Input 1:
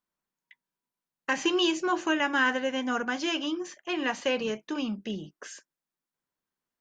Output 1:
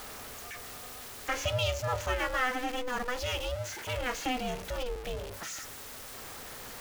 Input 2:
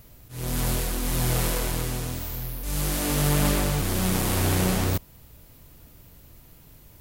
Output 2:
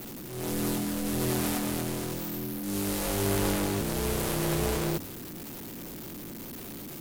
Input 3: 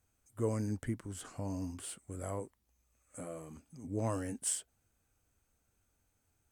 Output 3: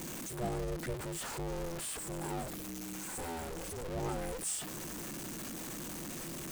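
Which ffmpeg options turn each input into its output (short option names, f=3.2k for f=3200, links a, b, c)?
-af "aeval=exprs='val(0)+0.5*0.0335*sgn(val(0))':c=same,aeval=exprs='val(0)*sin(2*PI*250*n/s)':c=same,bandreject=f=93.45:t=h:w=4,bandreject=f=186.9:t=h:w=4,bandreject=f=280.35:t=h:w=4,volume=-3.5dB"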